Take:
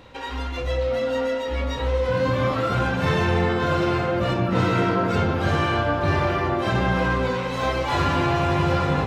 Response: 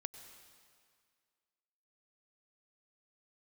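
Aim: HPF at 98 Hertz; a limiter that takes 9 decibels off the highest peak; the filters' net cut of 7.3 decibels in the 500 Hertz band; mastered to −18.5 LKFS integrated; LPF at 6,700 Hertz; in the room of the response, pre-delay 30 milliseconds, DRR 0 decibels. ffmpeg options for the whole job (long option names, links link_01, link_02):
-filter_complex "[0:a]highpass=98,lowpass=6700,equalizer=frequency=500:width_type=o:gain=-9,alimiter=limit=-20.5dB:level=0:latency=1,asplit=2[link_01][link_02];[1:a]atrim=start_sample=2205,adelay=30[link_03];[link_02][link_03]afir=irnorm=-1:irlink=0,volume=3dB[link_04];[link_01][link_04]amix=inputs=2:normalize=0,volume=8.5dB"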